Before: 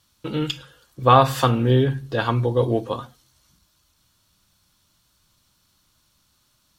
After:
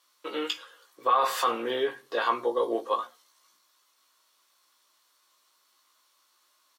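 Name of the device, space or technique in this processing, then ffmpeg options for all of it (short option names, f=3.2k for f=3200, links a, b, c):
laptop speaker: -filter_complex "[0:a]highpass=f=380:w=0.5412,highpass=f=380:w=1.3066,equalizer=f=1.1k:t=o:w=0.25:g=9.5,equalizer=f=2k:t=o:w=0.36:g=5,alimiter=limit=-11.5dB:level=0:latency=1:release=20,asettb=1/sr,asplit=3[a][b][c];[a]atrim=end=2.384[d];[b]atrim=start=2.38:end=2.89,asetpts=PTS-STARTPTS,afade=t=in:d=0.004:c=qsin,afade=t=out:st=0.506:d=0.004:c=qsin,equalizer=f=2.3k:t=o:w=0.63:g=-7[e];[c]atrim=start=2.886[f];[d][e]acrossfade=d=0.004:c1=hsin:c2=qsin[g];[g][f]acrossfade=d=0.004:c1=qsin:c2=hsin,asplit=2[h][i];[i]adelay=17,volume=-5dB[j];[h][j]amix=inputs=2:normalize=0,volume=-4dB"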